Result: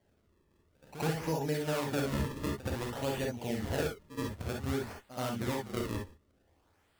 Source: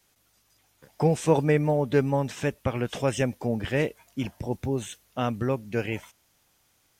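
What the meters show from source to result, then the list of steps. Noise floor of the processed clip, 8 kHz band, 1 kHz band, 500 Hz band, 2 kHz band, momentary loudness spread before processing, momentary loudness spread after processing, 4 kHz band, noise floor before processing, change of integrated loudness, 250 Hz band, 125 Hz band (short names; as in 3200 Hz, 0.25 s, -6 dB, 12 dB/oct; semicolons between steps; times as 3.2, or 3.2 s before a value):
-71 dBFS, -4.0 dB, -7.0 dB, -9.5 dB, -6.5 dB, 10 LU, 6 LU, -2.5 dB, -67 dBFS, -8.0 dB, -7.5 dB, -8.5 dB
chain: compressor 3:1, threshold -26 dBFS, peak gain reduction 9 dB; decimation with a swept rate 34×, swing 160% 0.54 Hz; pre-echo 74 ms -13 dB; non-linear reverb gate 80 ms rising, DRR 0.5 dB; gain -7 dB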